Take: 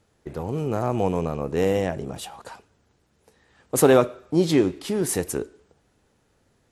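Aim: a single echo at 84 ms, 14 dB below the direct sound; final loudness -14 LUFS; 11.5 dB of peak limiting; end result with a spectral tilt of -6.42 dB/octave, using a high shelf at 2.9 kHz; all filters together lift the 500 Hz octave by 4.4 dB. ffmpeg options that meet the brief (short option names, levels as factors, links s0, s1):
-af "equalizer=f=500:t=o:g=5.5,highshelf=f=2900:g=-6.5,alimiter=limit=0.237:level=0:latency=1,aecho=1:1:84:0.2,volume=3.35"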